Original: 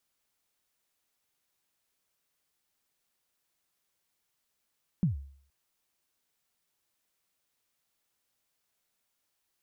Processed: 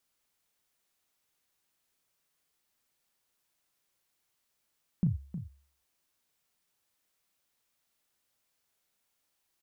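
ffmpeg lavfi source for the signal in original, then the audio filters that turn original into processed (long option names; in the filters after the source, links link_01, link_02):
-f lavfi -i "aevalsrc='0.1*pow(10,-3*t/0.55)*sin(2*PI*(200*0.129/log(69/200)*(exp(log(69/200)*min(t,0.129)/0.129)-1)+69*max(t-0.129,0)))':duration=0.47:sample_rate=44100"
-filter_complex "[0:a]asplit=2[link_01][link_02];[link_02]adelay=35,volume=-9dB[link_03];[link_01][link_03]amix=inputs=2:normalize=0,asplit=2[link_04][link_05];[link_05]aecho=0:1:312:0.282[link_06];[link_04][link_06]amix=inputs=2:normalize=0"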